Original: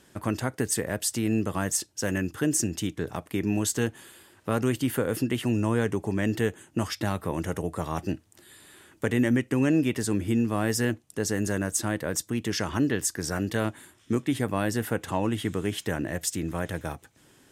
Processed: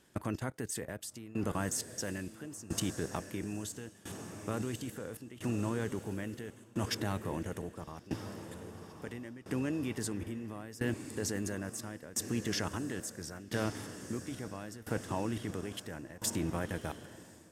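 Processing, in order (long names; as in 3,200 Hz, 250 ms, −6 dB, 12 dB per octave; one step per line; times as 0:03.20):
output level in coarse steps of 17 dB
feedback delay with all-pass diffusion 1,138 ms, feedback 59%, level −11 dB
shaped tremolo saw down 0.74 Hz, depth 90%
level +2 dB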